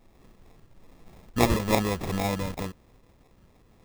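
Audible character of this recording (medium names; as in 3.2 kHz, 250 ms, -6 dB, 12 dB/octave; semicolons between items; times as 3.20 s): phasing stages 12, 1.1 Hz, lowest notch 700–4800 Hz; aliases and images of a low sample rate 1.5 kHz, jitter 0%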